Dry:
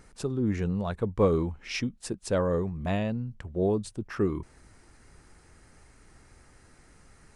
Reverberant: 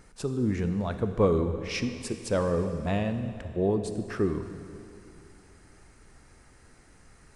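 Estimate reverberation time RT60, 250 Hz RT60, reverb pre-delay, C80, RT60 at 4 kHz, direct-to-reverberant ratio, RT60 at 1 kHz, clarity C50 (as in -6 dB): 2.8 s, 2.9 s, 24 ms, 9.5 dB, 2.6 s, 8.0 dB, 2.9 s, 8.5 dB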